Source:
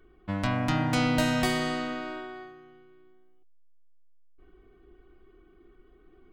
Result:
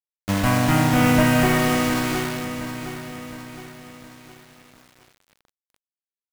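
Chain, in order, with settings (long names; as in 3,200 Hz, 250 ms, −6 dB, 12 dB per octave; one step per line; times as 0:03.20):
variable-slope delta modulation 16 kbit/s
bit-depth reduction 6 bits, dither none
feedback echo at a low word length 714 ms, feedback 55%, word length 8 bits, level −10.5 dB
level +9 dB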